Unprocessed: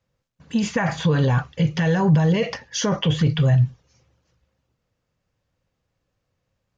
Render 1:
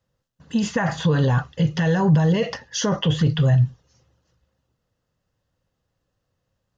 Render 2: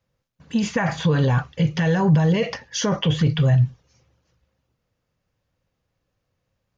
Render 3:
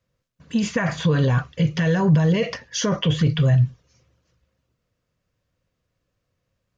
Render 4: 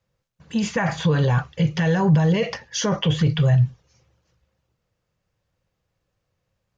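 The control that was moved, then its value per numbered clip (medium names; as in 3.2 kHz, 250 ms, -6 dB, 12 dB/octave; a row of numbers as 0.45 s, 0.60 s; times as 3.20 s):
band-stop, frequency: 2.3 kHz, 7.9 kHz, 830 Hz, 260 Hz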